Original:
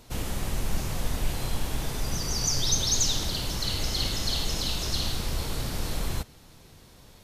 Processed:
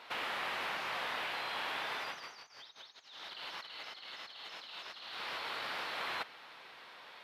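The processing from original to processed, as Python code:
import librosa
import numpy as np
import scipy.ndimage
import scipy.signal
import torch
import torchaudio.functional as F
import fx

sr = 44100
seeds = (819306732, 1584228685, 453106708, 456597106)

y = scipy.signal.sosfilt(scipy.signal.butter(2, 1200.0, 'highpass', fs=sr, output='sos'), x)
y = fx.over_compress(y, sr, threshold_db=-42.0, ratio=-1.0)
y = fx.air_absorb(y, sr, metres=410.0)
y = y * 10.0 ** (7.0 / 20.0)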